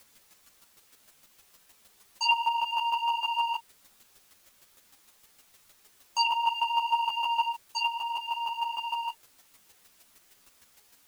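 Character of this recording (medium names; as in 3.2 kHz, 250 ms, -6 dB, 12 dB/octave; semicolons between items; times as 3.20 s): a quantiser's noise floor 10-bit, dither triangular; chopped level 6.5 Hz, depth 60%, duty 10%; a shimmering, thickened sound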